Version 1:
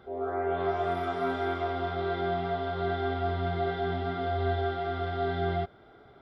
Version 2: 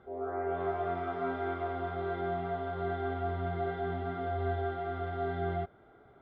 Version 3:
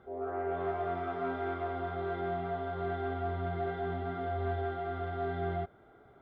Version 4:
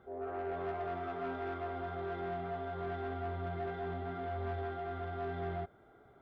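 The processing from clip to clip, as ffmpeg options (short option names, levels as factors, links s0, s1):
-af "lowpass=2300,volume=0.631"
-af "asoftclip=type=tanh:threshold=0.0668"
-af "asoftclip=type=tanh:threshold=0.0355,volume=0.75"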